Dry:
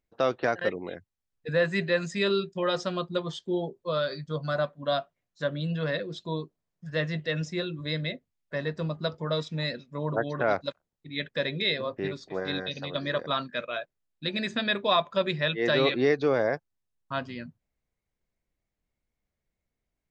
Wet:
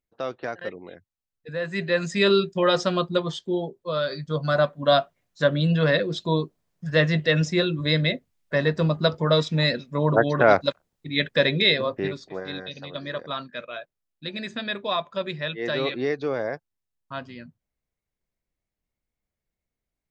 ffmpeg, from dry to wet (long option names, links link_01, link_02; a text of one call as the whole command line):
ffmpeg -i in.wav -af "volume=16dB,afade=type=in:start_time=1.61:duration=0.68:silence=0.251189,afade=type=out:start_time=3.02:duration=0.78:silence=0.446684,afade=type=in:start_time=3.8:duration=1.15:silence=0.354813,afade=type=out:start_time=11.51:duration=0.93:silence=0.266073" out.wav